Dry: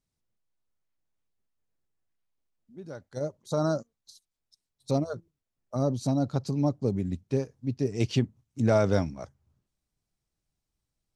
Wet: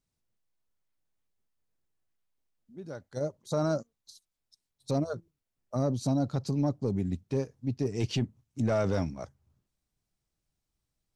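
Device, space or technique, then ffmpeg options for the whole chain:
soft clipper into limiter: -af "asoftclip=type=tanh:threshold=-15dB,alimiter=limit=-20.5dB:level=0:latency=1:release=11"

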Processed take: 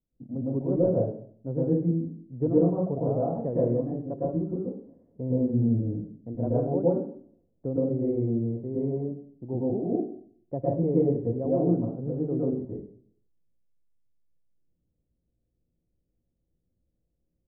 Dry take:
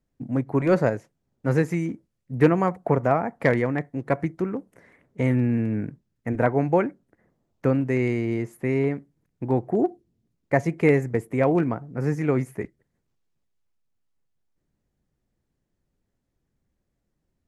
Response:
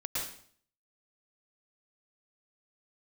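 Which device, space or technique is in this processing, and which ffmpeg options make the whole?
next room: -filter_complex "[0:a]lowpass=frequency=610:width=0.5412,lowpass=frequency=610:width=1.3066[link_01];[1:a]atrim=start_sample=2205[link_02];[link_01][link_02]afir=irnorm=-1:irlink=0,volume=-6.5dB"

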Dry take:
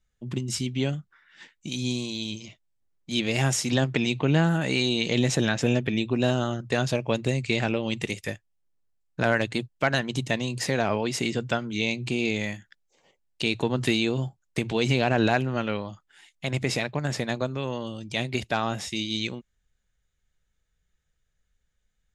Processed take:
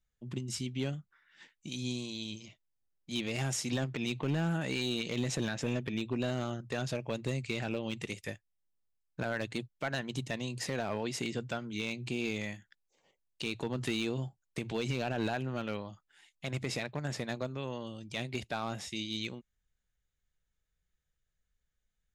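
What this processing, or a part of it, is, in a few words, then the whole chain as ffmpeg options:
limiter into clipper: -af "alimiter=limit=-12.5dB:level=0:latency=1:release=97,asoftclip=type=hard:threshold=-17dB,volume=-8dB"

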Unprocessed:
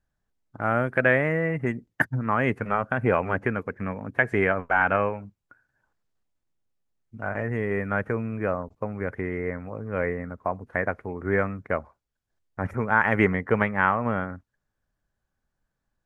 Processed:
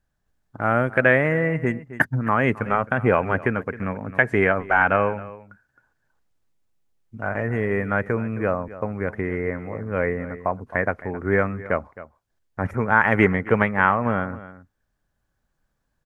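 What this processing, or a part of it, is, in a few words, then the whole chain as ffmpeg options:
ducked delay: -filter_complex "[0:a]asplit=3[link_01][link_02][link_03];[link_02]adelay=265,volume=-2dB[link_04];[link_03]apad=whole_len=719663[link_05];[link_04][link_05]sidechaincompress=threshold=-38dB:ratio=4:attack=7.4:release=833[link_06];[link_01][link_06]amix=inputs=2:normalize=0,volume=3.5dB"

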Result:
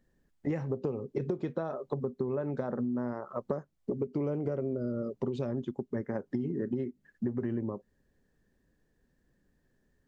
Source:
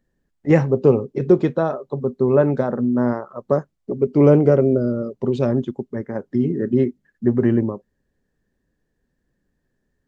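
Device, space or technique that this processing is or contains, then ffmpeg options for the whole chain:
serial compression, leveller first: -af "acompressor=threshold=-18dB:ratio=2.5,acompressor=threshold=-30dB:ratio=6"

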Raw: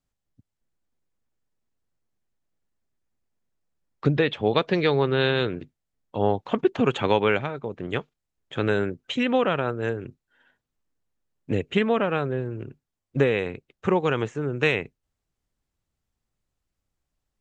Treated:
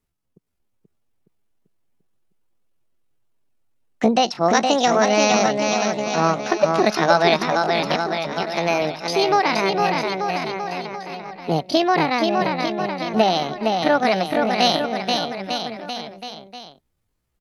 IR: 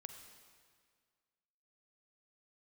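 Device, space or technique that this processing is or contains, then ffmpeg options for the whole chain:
chipmunk voice: -filter_complex "[0:a]asettb=1/sr,asplit=3[link_01][link_02][link_03];[link_01]atrim=end=7.974[link_04];[link_02]atrim=start=7.97:end=8.83,asetpts=PTS-STARTPTS,afade=type=in:duration=0.004:curve=qsin,afade=type=out:start_time=0.856:duration=0.004:curve=qsin,lowshelf=frequency=180:gain=-8[link_05];[link_03]atrim=start=8.826[link_06];[link_04][link_05]acrossfade=duration=0.004:curve1=hsin:curve2=qsin[link_07];[link_07][link_06]acrossfade=duration=0.004:curve1=qsin:curve2=hsin,aecho=1:1:470|893|1274|1616|1925:0.631|0.398|0.251|0.158|0.1,asetrate=70004,aresample=44100,atempo=0.629961,volume=4dB"

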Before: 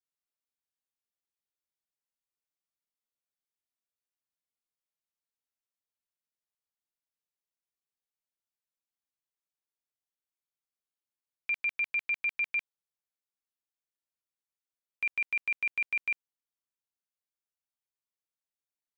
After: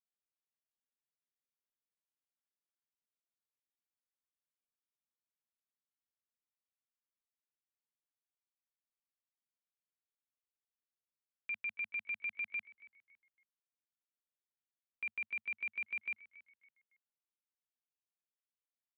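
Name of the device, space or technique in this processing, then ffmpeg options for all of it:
frequency-shifting delay pedal into a guitar cabinet: -filter_complex "[0:a]asplit=4[link_01][link_02][link_03][link_04];[link_02]adelay=279,afreqshift=-78,volume=-19.5dB[link_05];[link_03]adelay=558,afreqshift=-156,volume=-28.9dB[link_06];[link_04]adelay=837,afreqshift=-234,volume=-38.2dB[link_07];[link_01][link_05][link_06][link_07]amix=inputs=4:normalize=0,highpass=100,equalizer=frequency=100:width_type=q:width=4:gain=5,equalizer=frequency=160:width_type=q:width=4:gain=-10,equalizer=frequency=220:width_type=q:width=4:gain=8,equalizer=frequency=740:width_type=q:width=4:gain=-5,lowpass=frequency=3500:width=0.5412,lowpass=frequency=3500:width=1.3066,volume=-8.5dB"

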